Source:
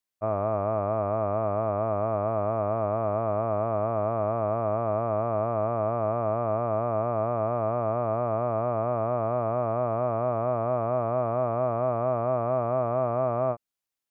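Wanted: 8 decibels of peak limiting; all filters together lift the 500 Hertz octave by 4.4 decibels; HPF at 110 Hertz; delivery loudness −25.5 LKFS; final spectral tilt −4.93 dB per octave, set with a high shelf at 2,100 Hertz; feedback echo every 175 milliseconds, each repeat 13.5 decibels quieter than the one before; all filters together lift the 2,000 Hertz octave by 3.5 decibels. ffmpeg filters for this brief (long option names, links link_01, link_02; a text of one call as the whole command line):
ffmpeg -i in.wav -af "highpass=110,equalizer=frequency=500:width_type=o:gain=6,equalizer=frequency=2000:width_type=o:gain=7,highshelf=frequency=2100:gain=-4.5,alimiter=limit=-20.5dB:level=0:latency=1,aecho=1:1:175|350:0.211|0.0444,volume=4dB" out.wav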